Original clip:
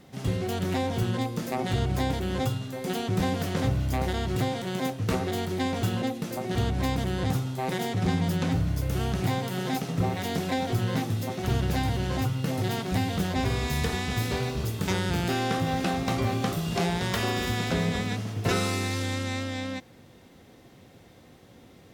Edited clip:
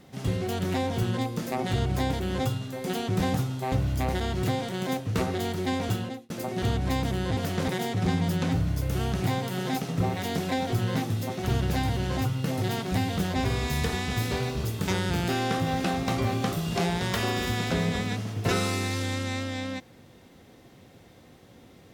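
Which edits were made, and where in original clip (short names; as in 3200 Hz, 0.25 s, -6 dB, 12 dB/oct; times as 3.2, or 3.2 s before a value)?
3.34–3.65 swap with 7.3–7.68
5.81–6.23 fade out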